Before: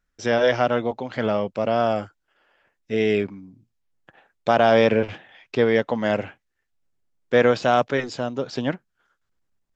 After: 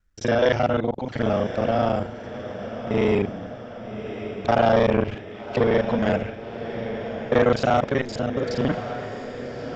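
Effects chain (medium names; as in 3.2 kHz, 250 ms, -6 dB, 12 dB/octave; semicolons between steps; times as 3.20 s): time reversed locally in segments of 35 ms; bass shelf 170 Hz +9 dB; echo that smears into a reverb 1164 ms, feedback 58%, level -11.5 dB; transformer saturation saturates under 540 Hz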